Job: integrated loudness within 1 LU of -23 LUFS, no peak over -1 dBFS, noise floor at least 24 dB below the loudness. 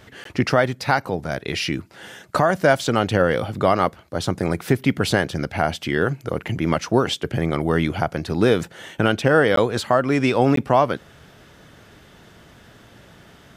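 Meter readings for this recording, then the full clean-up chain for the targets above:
dropouts 3; longest dropout 13 ms; loudness -21.0 LUFS; peak -3.5 dBFS; loudness target -23.0 LUFS
-> interpolate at 0.24/9.56/10.56, 13 ms; gain -2 dB

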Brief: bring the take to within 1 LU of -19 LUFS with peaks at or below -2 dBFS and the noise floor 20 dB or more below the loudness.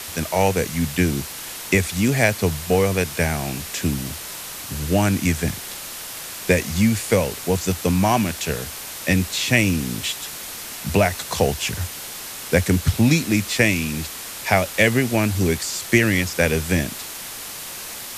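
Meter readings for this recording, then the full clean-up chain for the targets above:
noise floor -34 dBFS; noise floor target -42 dBFS; loudness -21.5 LUFS; peak -2.5 dBFS; loudness target -19.0 LUFS
-> noise print and reduce 8 dB; gain +2.5 dB; limiter -2 dBFS

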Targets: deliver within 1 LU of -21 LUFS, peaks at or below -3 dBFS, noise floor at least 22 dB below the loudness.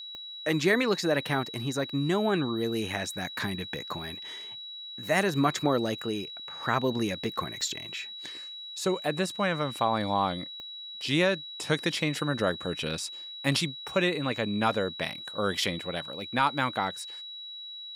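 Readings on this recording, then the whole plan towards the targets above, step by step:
clicks 4; steady tone 3900 Hz; tone level -39 dBFS; loudness -29.5 LUFS; peak -12.0 dBFS; loudness target -21.0 LUFS
-> de-click; notch 3900 Hz, Q 30; gain +8.5 dB

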